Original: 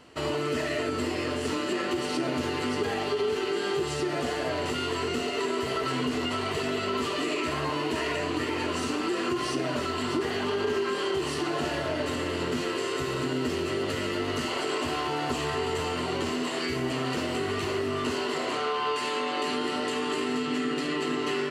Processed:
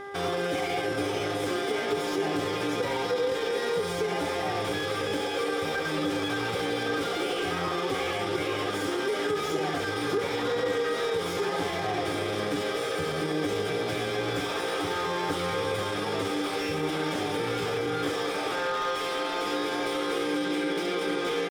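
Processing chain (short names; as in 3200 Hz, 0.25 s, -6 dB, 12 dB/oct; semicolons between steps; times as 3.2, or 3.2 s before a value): pitch shift +3 st; buzz 400 Hz, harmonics 5, -40 dBFS -4 dB/oct; on a send at -15 dB: reverb RT60 3.5 s, pre-delay 3 ms; on the sum: slew limiter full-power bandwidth 78 Hz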